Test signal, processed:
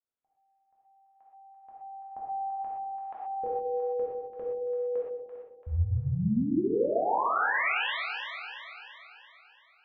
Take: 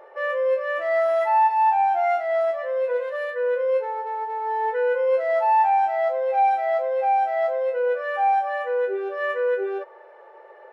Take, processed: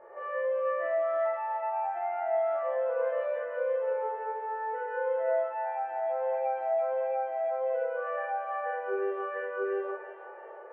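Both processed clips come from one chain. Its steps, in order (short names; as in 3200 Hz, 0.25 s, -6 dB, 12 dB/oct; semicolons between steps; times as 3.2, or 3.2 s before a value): Bessel low-pass 1600 Hz, order 8; limiter -24.5 dBFS; on a send: split-band echo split 670 Hz, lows 0.152 s, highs 0.338 s, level -6.5 dB; on the sum: non-linear reverb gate 0.15 s flat, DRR -5.5 dB; gain -7 dB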